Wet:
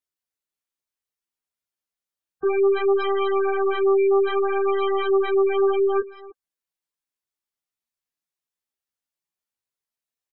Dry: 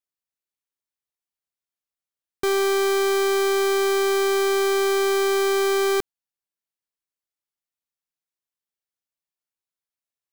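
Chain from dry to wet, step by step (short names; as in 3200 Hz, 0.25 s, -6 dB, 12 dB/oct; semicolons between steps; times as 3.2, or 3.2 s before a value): echo 0.3 s -19 dB; chorus voices 2, 0.62 Hz, delay 15 ms, depth 3.3 ms; spectral gate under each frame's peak -15 dB strong; gain +4 dB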